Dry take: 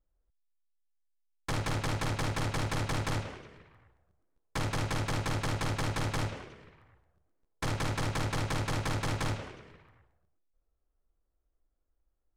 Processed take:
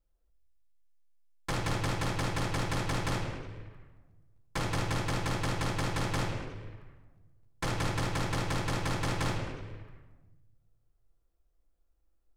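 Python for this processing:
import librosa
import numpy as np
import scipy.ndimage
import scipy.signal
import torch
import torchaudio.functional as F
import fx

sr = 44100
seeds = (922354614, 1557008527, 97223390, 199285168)

y = fx.rider(x, sr, range_db=10, speed_s=0.5)
y = fx.room_shoebox(y, sr, seeds[0], volume_m3=470.0, walls='mixed', distance_m=0.81)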